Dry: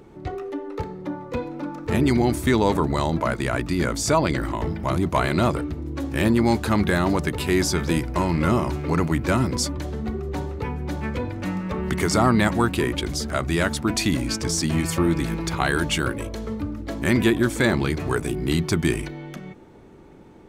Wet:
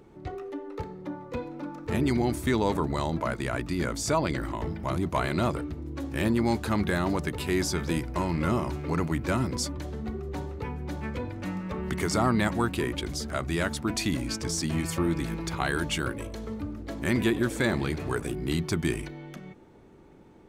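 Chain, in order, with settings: 16.19–18.34 frequency-shifting echo 96 ms, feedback 60%, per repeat +84 Hz, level -20 dB; gain -6 dB

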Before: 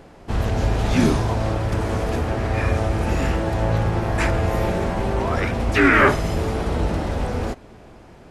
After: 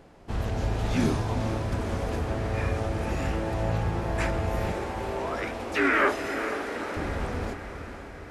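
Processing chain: 4.72–6.97 HPF 270 Hz 24 dB/oct; diffused feedback echo 0.469 s, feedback 62%, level -9.5 dB; gain -7.5 dB

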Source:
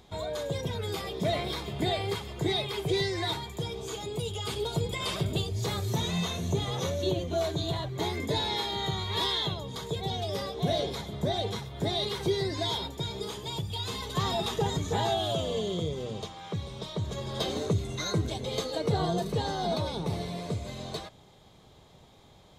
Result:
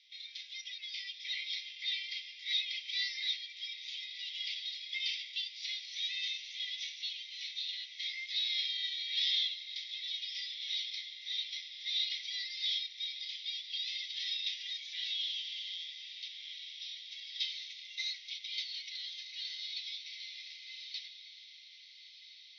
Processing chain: CVSD 64 kbps; Chebyshev band-pass 2000–5700 Hz, order 5; diffused feedback echo 1.366 s, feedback 55%, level -11.5 dB

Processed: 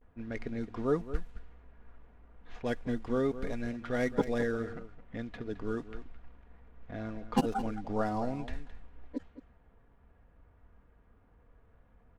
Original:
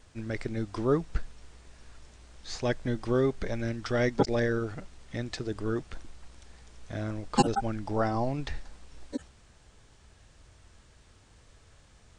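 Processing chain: median filter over 9 samples; vibrato 0.34 Hz 47 cents; comb 4.2 ms, depth 41%; low-pass opened by the level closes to 1400 Hz, open at -24 dBFS; outdoor echo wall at 37 m, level -13 dB; gain -4.5 dB

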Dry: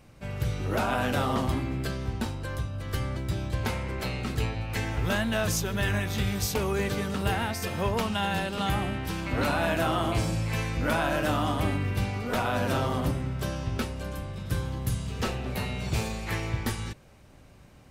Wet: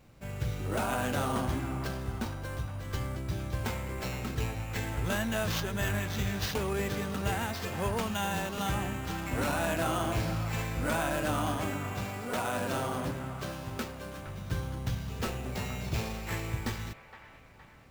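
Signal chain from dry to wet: 11.57–14.27 HPF 160 Hz 6 dB/oct; sample-rate reducer 9700 Hz, jitter 0%; band-limited delay 0.465 s, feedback 50%, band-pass 1300 Hz, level -10 dB; gain -4 dB

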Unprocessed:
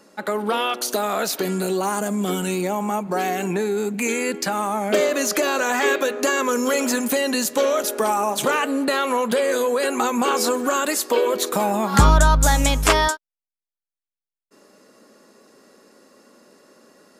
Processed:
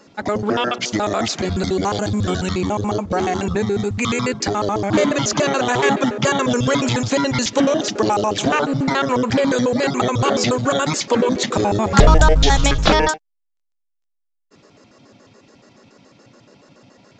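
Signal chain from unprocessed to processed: trilling pitch shifter -12 st, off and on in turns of 71 ms; gain +3.5 dB; A-law 128 kbps 16000 Hz

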